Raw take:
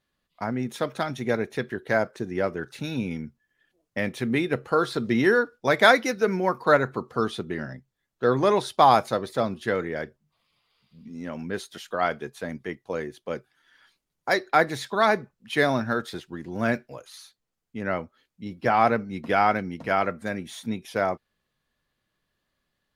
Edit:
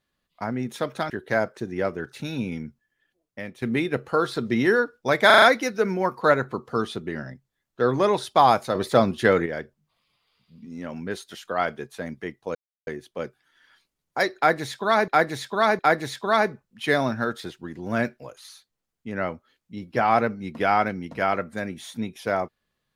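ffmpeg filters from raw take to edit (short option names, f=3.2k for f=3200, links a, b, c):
-filter_complex "[0:a]asplit=12[a][b][c][d][e][f][g][h][i][j][k][l];[a]atrim=end=1.102[m];[b]atrim=start=1.688:end=4.21,asetpts=PTS-STARTPTS,afade=t=out:st=1.552:d=0.97:silence=0.251189[n];[c]atrim=start=4.21:end=5.892,asetpts=PTS-STARTPTS,afade=t=in:d=0.004:c=hsin:silence=0.251189[o];[d]atrim=start=5.848:end=5.892[p];[e]atrim=start=5.848:end=5.892[q];[f]atrim=start=5.848:end=5.892[r];[g]atrim=start=5.848:end=9.182[s];[h]atrim=start=9.178:end=9.892,asetpts=PTS-STARTPTS,volume=7dB[t];[i]atrim=start=9.888:end=12.98,asetpts=PTS-STARTPTS,afade=t=out:st=3.088:d=0.004:c=hsin,apad=pad_dur=0.32[u];[j]atrim=start=12.98:end=15.192,asetpts=PTS-STARTPTS,afade=t=in:d=0.004:c=hsin[v];[k]atrim=start=14.478:end=15.192[w];[l]atrim=start=14.478[x];[n][o]concat=n=2:v=0:a=1[y];[m][y]acrossfade=d=0.004:c1=hsin:c2=hsin[z];[z][p]acrossfade=d=0.004:c1=hsin:c2=hsin[aa];[aa][q]acrossfade=d=0.004:c1=hsin:c2=hsin[ab];[ab][r]acrossfade=d=0.004:c1=hsin:c2=hsin[ac];[ac][s]acrossfade=d=0.004:c1=hsin:c2=hsin[ad];[ad][t]acrossfade=d=0.004:c1=hsin:c2=hsin[ae];[u][v]concat=n=2:v=0:a=1[af];[ae][af]acrossfade=d=0.004:c1=hsin:c2=hsin[ag];[ag][w]acrossfade=d=0.004:c1=hsin:c2=hsin[ah];[ah][x]acrossfade=d=0.004:c1=hsin:c2=hsin"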